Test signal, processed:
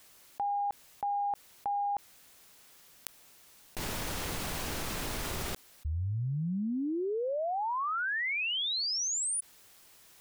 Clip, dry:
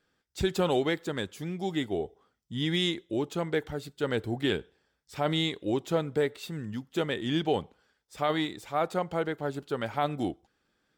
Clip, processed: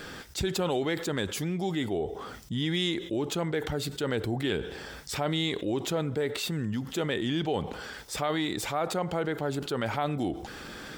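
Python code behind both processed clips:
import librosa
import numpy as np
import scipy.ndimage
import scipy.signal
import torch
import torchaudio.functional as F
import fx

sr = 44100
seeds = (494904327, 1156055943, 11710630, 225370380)

y = fx.env_flatten(x, sr, amount_pct=70)
y = y * 10.0 ** (-4.0 / 20.0)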